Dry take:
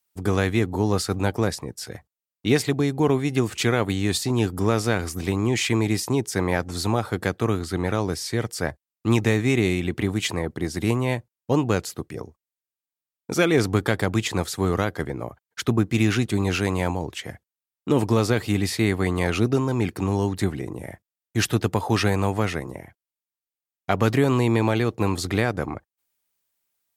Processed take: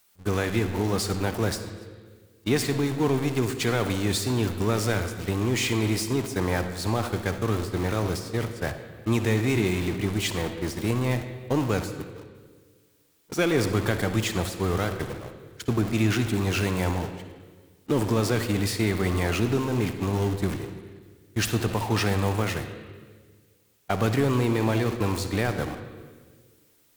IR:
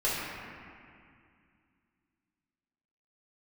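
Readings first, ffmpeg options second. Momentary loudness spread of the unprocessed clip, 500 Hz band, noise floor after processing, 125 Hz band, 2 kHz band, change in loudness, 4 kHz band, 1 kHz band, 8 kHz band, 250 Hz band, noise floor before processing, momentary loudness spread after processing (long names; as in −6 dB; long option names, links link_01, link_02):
12 LU, −3.0 dB, −61 dBFS, −2.0 dB, −3.0 dB, −2.5 dB, −2.0 dB, −3.0 dB, −2.0 dB, −3.0 dB, below −85 dBFS, 10 LU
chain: -filter_complex "[0:a]aeval=exprs='val(0)+0.5*0.0668*sgn(val(0))':channel_layout=same,agate=range=-28dB:threshold=-23dB:ratio=16:detection=peak,asplit=2[link_01][link_02];[1:a]atrim=start_sample=2205,asetrate=70560,aresample=44100,adelay=54[link_03];[link_02][link_03]afir=irnorm=-1:irlink=0,volume=-15dB[link_04];[link_01][link_04]amix=inputs=2:normalize=0,volume=-5.5dB"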